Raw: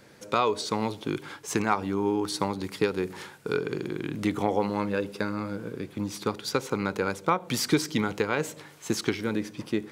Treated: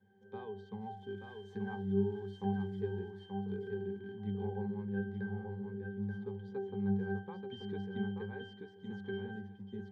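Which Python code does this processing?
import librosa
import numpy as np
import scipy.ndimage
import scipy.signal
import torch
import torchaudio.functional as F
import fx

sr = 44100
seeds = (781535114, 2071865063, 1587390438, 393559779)

y = fx.crossing_spikes(x, sr, level_db=-24.5, at=(0.8, 3.11))
y = scipy.signal.sosfilt(scipy.signal.butter(2, 93.0, 'highpass', fs=sr, output='sos'), y)
y = fx.high_shelf(y, sr, hz=9200.0, db=-11.5)
y = fx.octave_resonator(y, sr, note='G', decay_s=0.54)
y = fx.echo_feedback(y, sr, ms=882, feedback_pct=16, wet_db=-5)
y = F.gain(torch.from_numpy(y), 4.5).numpy()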